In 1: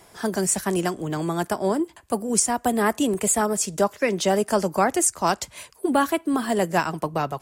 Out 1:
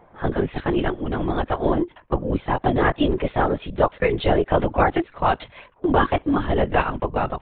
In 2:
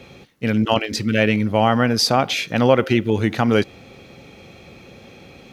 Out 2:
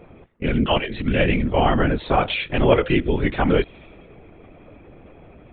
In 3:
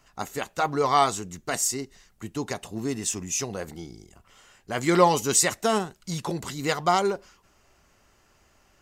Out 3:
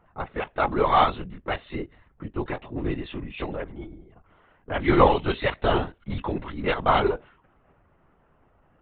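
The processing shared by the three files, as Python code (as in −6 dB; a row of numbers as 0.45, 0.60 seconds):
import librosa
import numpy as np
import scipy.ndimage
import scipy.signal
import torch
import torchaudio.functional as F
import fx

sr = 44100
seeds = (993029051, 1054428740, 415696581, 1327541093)

y = fx.env_lowpass(x, sr, base_hz=1200.0, full_db=-17.5)
y = fx.lpc_vocoder(y, sr, seeds[0], excitation='whisper', order=16)
y = librosa.util.normalize(y) * 10.0 ** (-3 / 20.0)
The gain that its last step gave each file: +2.5, −1.0, +1.5 decibels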